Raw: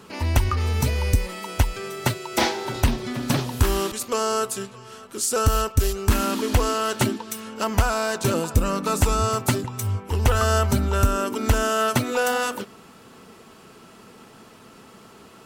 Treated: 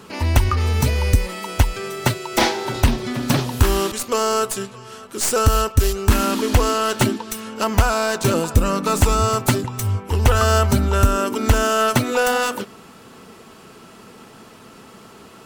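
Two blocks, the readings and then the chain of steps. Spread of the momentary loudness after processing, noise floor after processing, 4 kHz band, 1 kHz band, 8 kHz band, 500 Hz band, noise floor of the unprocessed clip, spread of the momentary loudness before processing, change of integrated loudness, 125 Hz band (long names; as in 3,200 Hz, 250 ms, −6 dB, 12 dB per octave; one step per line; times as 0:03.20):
7 LU, −44 dBFS, +4.0 dB, +4.0 dB, +3.0 dB, +4.0 dB, −48 dBFS, 7 LU, +4.0 dB, +4.0 dB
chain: stylus tracing distortion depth 0.029 ms
level +4 dB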